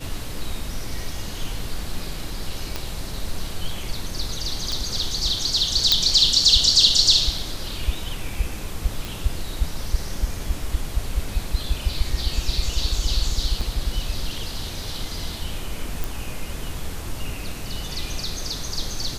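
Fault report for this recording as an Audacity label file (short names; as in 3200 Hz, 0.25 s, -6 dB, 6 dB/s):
2.760000	2.760000	pop -11 dBFS
4.720000	4.720000	pop
5.920000	5.920000	pop -2 dBFS
9.050000	9.050000	pop
13.610000	13.610000	gap 4.7 ms
16.040000	16.040000	pop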